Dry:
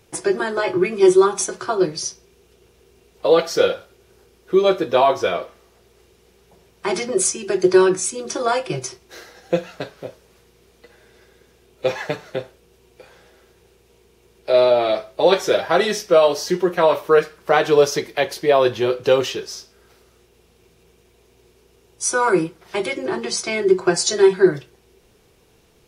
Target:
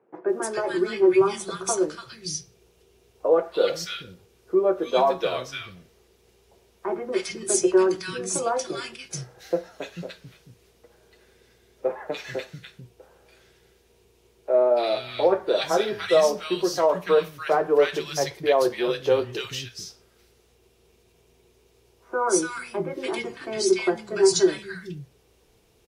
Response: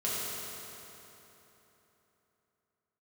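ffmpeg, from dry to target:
-filter_complex "[0:a]acrossover=split=200|1500[a][b][c];[c]adelay=290[d];[a]adelay=440[e];[e][b][d]amix=inputs=3:normalize=0,volume=-4.5dB"

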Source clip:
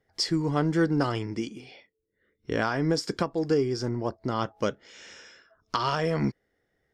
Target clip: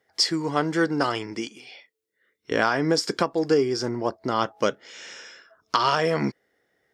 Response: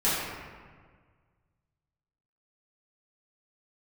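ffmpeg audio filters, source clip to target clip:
-af "asetnsamples=n=441:p=0,asendcmd='1.47 highpass f 1300;2.51 highpass f 360',highpass=f=570:p=1,volume=6.5dB"

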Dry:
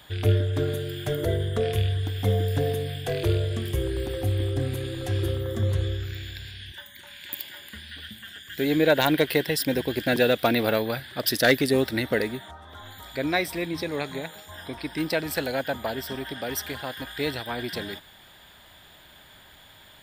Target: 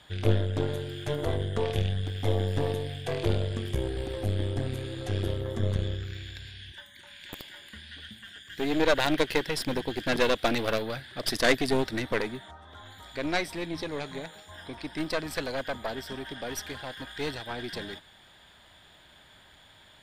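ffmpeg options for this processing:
-af "aeval=exprs='0.355*(cos(1*acos(clip(val(0)/0.355,-1,1)))-cos(1*PI/2))+0.0891*(cos(4*acos(clip(val(0)/0.355,-1,1)))-cos(4*PI/2))':c=same,lowpass=9k,volume=-4dB"

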